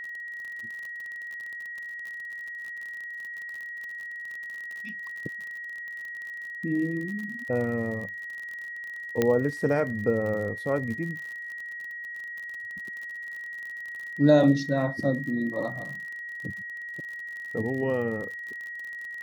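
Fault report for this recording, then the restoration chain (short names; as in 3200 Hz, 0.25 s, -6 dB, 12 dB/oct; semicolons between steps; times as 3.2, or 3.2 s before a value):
crackle 50/s -35 dBFS
tone 1900 Hz -35 dBFS
9.22 pop -10 dBFS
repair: de-click; notch 1900 Hz, Q 30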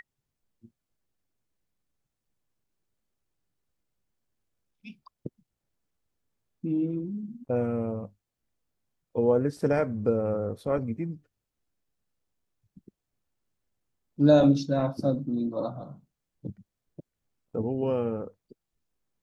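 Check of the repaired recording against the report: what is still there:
none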